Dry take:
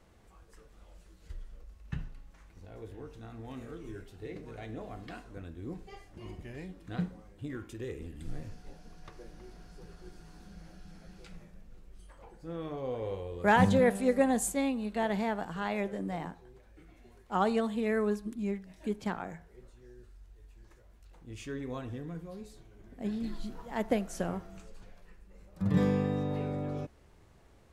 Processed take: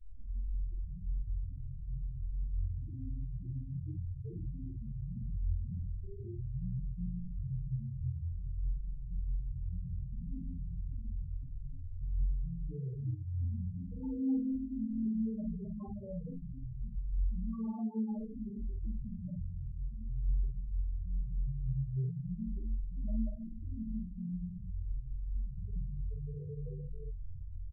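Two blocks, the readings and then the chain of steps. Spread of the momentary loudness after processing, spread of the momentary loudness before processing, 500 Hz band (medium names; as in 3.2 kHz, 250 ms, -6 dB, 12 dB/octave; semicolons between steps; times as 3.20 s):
7 LU, 24 LU, -20.5 dB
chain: graphic EQ 125/250/500/1000/2000/4000/8000 Hz +6/-4/-9/-8/-12/-5/+12 dB; compression 16:1, threshold -45 dBFS, peak gain reduction 25.5 dB; Schmitt trigger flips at -53 dBFS; flutter echo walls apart 3.9 m, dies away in 0.77 s; gated-style reverb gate 250 ms rising, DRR 3.5 dB; loudest bins only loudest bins 4; doubling 49 ms -4 dB; tape noise reduction on one side only encoder only; trim +8 dB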